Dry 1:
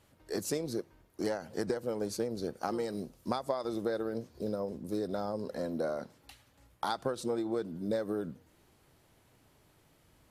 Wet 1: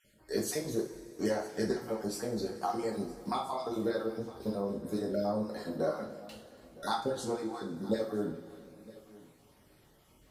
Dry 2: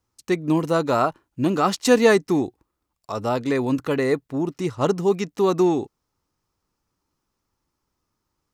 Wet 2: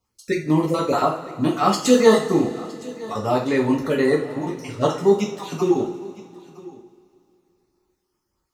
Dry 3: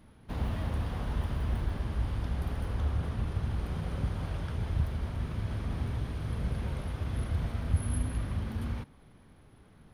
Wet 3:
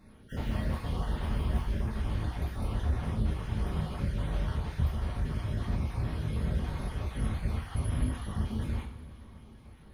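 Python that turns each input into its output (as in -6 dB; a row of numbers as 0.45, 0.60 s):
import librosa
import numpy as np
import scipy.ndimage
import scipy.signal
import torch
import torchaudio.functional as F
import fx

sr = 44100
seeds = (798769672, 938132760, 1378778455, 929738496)

y = fx.spec_dropout(x, sr, seeds[0], share_pct=31)
y = y + 10.0 ** (-20.5 / 20.0) * np.pad(y, (int(963 * sr / 1000.0), 0))[:len(y)]
y = fx.rev_double_slope(y, sr, seeds[1], early_s=0.35, late_s=2.7, knee_db=-19, drr_db=-2.5)
y = F.gain(torch.from_numpy(y), -1.5).numpy()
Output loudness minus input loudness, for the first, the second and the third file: +1.0, +1.0, +0.5 LU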